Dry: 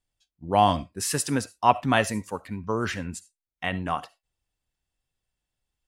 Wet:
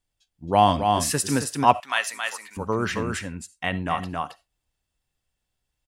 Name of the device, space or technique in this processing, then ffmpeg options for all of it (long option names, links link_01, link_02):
ducked delay: -filter_complex "[0:a]asplit=3[link_01][link_02][link_03];[link_02]adelay=271,volume=-3dB[link_04];[link_03]apad=whole_len=270867[link_05];[link_04][link_05]sidechaincompress=threshold=-28dB:ratio=8:attack=22:release=217[link_06];[link_01][link_06]amix=inputs=2:normalize=0,asettb=1/sr,asplit=3[link_07][link_08][link_09];[link_07]atrim=end=1.804[link_10];[link_08]atrim=start=1.8:end=2.57,asetpts=PTS-STARTPTS,afade=type=in:duration=0.004:curve=qsin,afade=type=out:start_time=0.766:duration=0.004:curve=qsin,highpass=1300[link_11];[link_09]atrim=start=2.566[link_12];[link_10][link_11]acrossfade=duration=0.004:curve1=hsin:curve2=qsin[link_13];[link_13][link_12]acrossfade=duration=0.004:curve1=qsin:curve2=hsin,volume=2dB"